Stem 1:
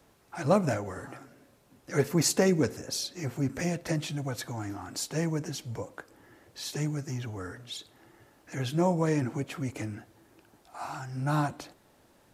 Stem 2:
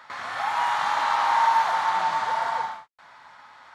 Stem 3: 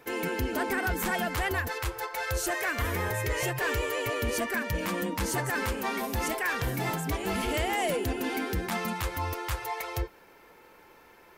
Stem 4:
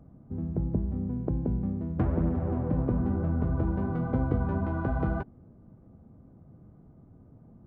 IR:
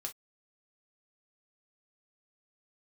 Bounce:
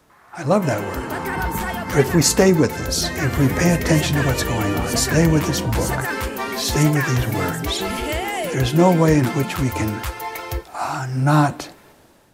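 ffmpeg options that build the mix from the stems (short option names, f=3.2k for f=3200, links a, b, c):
-filter_complex "[0:a]volume=2.5dB,asplit=2[a][b];[b]volume=-9dB[c];[1:a]lowpass=2.1k,volume=-17dB[d];[2:a]adelay=550,volume=-7.5dB,asplit=2[e][f];[f]volume=-4dB[g];[3:a]adelay=800,volume=-8.5dB[h];[4:a]atrim=start_sample=2205[i];[c][g]amix=inputs=2:normalize=0[j];[j][i]afir=irnorm=-1:irlink=0[k];[a][d][e][h][k]amix=inputs=5:normalize=0,dynaudnorm=f=240:g=5:m=10dB"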